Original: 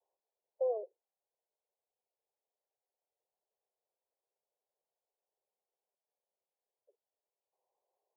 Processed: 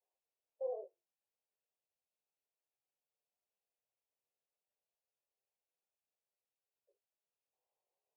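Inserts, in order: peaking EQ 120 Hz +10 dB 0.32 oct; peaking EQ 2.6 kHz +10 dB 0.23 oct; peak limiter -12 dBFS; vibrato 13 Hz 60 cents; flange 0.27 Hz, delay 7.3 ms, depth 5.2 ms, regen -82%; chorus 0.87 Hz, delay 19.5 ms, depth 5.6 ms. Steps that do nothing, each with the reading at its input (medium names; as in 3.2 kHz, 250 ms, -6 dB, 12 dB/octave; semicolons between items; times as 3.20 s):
peaking EQ 120 Hz: input has nothing below 360 Hz; peaking EQ 2.6 kHz: input has nothing above 810 Hz; peak limiter -12 dBFS: peak at its input -25.0 dBFS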